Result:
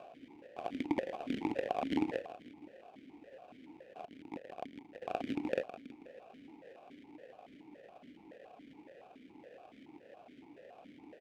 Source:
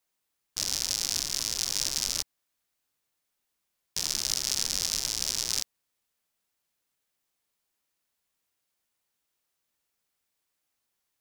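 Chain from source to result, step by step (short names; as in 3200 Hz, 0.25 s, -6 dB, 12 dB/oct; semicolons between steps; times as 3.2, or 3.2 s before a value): per-bin compression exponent 0.4; reverb removal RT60 0.88 s; 4.05–5.02 gate -26 dBFS, range -28 dB; limiter -12 dBFS, peak gain reduction 7 dB; sample-rate reducer 1200 Hz, jitter 20%; feedback echo 0.162 s, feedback 53%, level -12 dB; vowel sequencer 7.1 Hz; gain +7 dB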